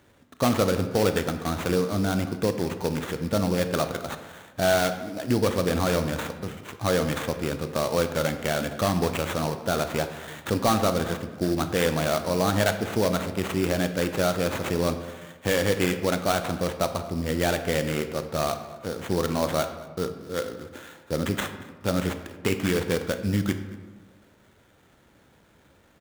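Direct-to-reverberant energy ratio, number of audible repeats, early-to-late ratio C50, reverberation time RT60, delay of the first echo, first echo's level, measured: 8.0 dB, 1, 9.5 dB, 1.3 s, 0.23 s, -21.5 dB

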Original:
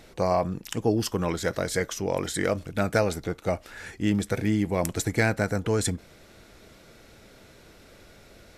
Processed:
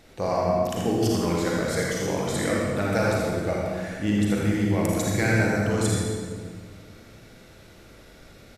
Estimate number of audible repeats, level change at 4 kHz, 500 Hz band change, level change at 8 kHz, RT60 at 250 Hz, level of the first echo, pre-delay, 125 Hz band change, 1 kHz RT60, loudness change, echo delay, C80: 1, +1.5 dB, +2.0 dB, +1.0 dB, 2.2 s, -5.5 dB, 36 ms, +3.5 dB, 1.7 s, +2.5 dB, 81 ms, -1.0 dB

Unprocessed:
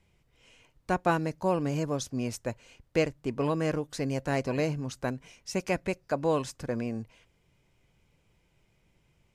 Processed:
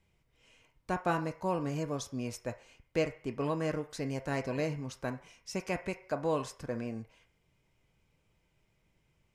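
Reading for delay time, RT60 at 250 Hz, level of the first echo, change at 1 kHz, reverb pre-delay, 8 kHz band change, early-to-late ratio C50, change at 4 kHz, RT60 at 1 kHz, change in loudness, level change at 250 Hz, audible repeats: none, 0.50 s, none, -4.0 dB, 3 ms, -5.0 dB, 13.5 dB, -4.5 dB, 0.55 s, -4.5 dB, -5.0 dB, none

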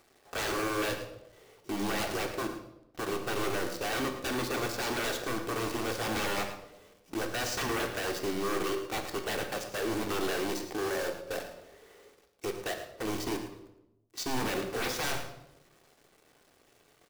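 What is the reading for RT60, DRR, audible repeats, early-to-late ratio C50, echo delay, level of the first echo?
0.90 s, 3.5 dB, 1, 7.0 dB, 0.11 s, -12.0 dB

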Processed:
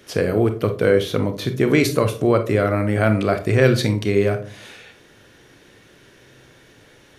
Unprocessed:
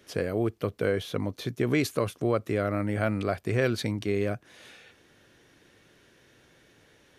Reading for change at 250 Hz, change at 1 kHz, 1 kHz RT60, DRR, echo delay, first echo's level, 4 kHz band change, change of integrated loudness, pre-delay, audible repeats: +9.0 dB, +9.0 dB, 0.40 s, 7.0 dB, none, none, +9.5 dB, +10.0 dB, 28 ms, none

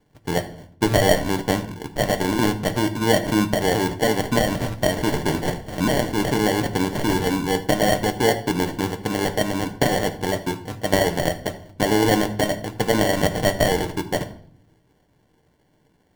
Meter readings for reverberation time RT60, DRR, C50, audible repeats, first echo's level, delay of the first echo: 0.60 s, 6.5 dB, 13.0 dB, none, none, none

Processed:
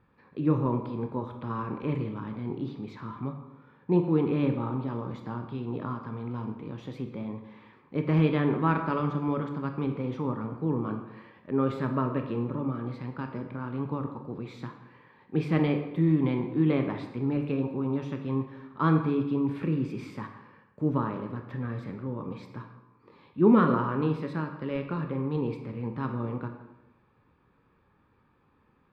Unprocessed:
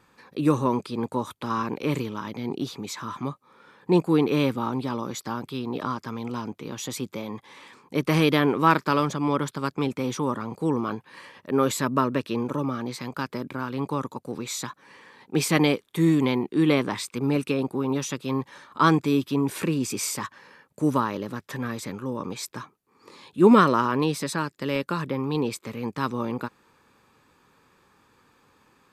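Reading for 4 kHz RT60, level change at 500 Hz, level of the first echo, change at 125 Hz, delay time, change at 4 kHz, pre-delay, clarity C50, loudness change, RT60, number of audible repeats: 0.70 s, -5.0 dB, none, 0.0 dB, none, -16.0 dB, 16 ms, 7.5 dB, -4.0 dB, 1.0 s, none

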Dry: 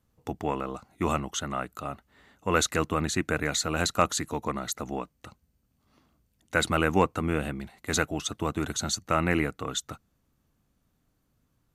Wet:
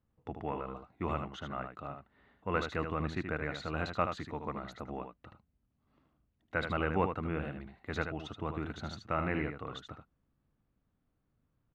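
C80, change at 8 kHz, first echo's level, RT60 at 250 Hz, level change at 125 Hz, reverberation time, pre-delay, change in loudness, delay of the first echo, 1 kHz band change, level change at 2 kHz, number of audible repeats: none, -29.5 dB, -7.0 dB, none, -6.0 dB, none, none, -8.5 dB, 77 ms, -7.0 dB, -8.0 dB, 1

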